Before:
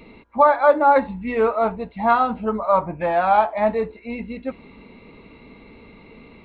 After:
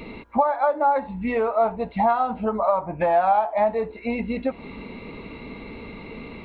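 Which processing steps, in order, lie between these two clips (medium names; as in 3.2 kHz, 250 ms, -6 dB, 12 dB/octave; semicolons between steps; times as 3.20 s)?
compression 16:1, threshold -30 dBFS, peak gain reduction 21.5 dB; dynamic bell 740 Hz, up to +8 dB, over -47 dBFS, Q 1.5; trim +7.5 dB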